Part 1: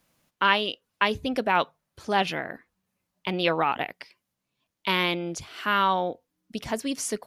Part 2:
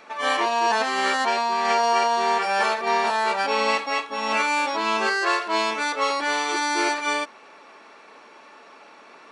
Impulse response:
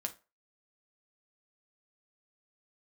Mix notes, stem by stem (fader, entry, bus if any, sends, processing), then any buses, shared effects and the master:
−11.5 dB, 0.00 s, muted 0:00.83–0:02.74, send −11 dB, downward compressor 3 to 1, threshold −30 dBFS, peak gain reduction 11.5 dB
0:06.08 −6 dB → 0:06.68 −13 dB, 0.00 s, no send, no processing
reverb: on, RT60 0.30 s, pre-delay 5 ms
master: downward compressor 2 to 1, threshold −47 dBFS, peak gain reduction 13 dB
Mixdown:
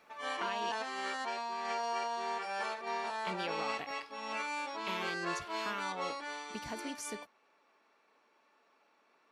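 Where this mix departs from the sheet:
stem 2 −6.0 dB → −15.5 dB
master: missing downward compressor 2 to 1, threshold −47 dBFS, peak gain reduction 13 dB

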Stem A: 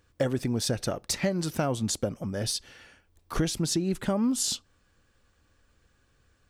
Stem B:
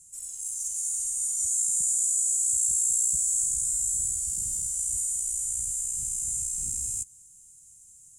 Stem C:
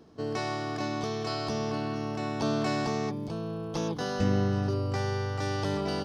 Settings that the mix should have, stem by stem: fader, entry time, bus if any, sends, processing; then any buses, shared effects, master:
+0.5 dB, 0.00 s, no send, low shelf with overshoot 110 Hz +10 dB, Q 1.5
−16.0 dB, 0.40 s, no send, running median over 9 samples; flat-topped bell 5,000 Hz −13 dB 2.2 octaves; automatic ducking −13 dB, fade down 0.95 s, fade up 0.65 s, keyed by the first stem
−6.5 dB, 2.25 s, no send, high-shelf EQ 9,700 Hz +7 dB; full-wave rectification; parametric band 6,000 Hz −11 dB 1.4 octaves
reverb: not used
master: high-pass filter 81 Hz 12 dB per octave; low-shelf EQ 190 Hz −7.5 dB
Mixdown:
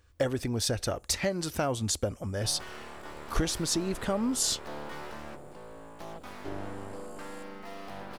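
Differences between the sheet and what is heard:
stem B: missing running median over 9 samples
master: missing high-pass filter 81 Hz 12 dB per octave

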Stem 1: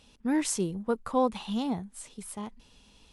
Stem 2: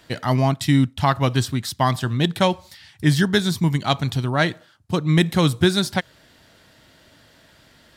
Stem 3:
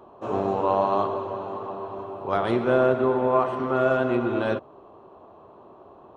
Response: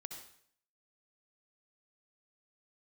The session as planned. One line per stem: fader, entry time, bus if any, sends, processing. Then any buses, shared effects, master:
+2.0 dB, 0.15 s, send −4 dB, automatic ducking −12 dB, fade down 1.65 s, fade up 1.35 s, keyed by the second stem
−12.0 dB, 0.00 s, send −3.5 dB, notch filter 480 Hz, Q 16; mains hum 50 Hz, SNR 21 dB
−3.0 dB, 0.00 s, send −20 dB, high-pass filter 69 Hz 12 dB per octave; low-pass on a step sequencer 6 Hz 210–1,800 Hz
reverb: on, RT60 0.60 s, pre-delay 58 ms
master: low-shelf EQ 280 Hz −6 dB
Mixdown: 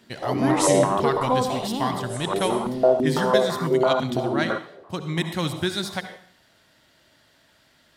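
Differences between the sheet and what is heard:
stem 2: missing mains hum 50 Hz, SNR 21 dB
reverb return +9.0 dB

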